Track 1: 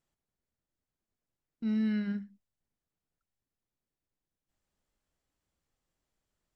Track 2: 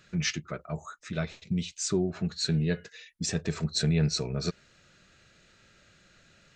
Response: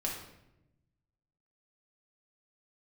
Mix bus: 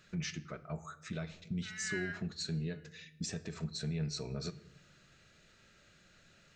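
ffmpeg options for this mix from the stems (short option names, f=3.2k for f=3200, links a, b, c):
-filter_complex "[0:a]highpass=f=1.7k:t=q:w=4,volume=-1.5dB[a];[1:a]alimiter=level_in=2dB:limit=-24dB:level=0:latency=1:release=302,volume=-2dB,volume=-5.5dB,asplit=2[b][c];[c]volume=-13dB[d];[2:a]atrim=start_sample=2205[e];[d][e]afir=irnorm=-1:irlink=0[f];[a][b][f]amix=inputs=3:normalize=0"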